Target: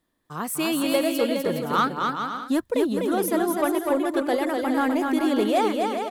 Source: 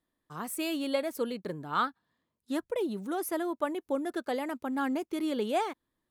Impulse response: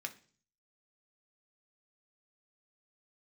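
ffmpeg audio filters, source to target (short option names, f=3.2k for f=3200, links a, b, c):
-filter_complex "[0:a]asettb=1/sr,asplit=3[a][b][c];[a]atrim=end=1.784[d];[b]atrim=start=1.78:end=2.69,asetpts=PTS-STARTPTS,afade=t=in:d=0.004:c=qsin,afade=t=out:st=0.906:d=0.004:c=qsin,bass=f=250:g=7,treble=f=4k:g=3[e];[c]atrim=start=2.686[f];[d][e]acrossfade=d=0.004:c1=hsin:c2=qsin[g];[g][f]acrossfade=d=0.004:c1=qsin:c2=hsin,asoftclip=type=tanh:threshold=-21dB,aecho=1:1:250|412.5|518.1|586.8|631.4:0.631|0.398|0.251|0.158|0.1,volume=8dB"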